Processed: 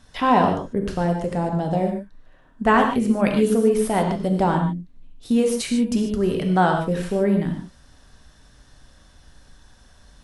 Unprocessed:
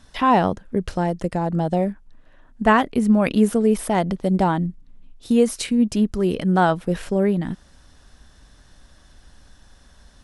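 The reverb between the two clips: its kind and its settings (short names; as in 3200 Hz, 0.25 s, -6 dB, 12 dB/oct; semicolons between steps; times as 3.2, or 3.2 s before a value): non-linear reverb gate 0.17 s flat, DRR 2.5 dB; gain -2 dB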